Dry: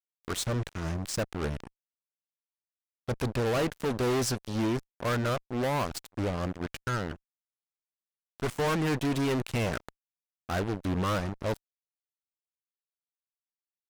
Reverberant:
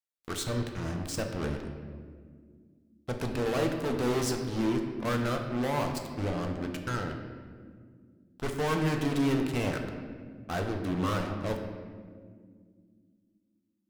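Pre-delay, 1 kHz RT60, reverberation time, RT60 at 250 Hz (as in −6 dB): 3 ms, 1.5 s, 2.0 s, 3.6 s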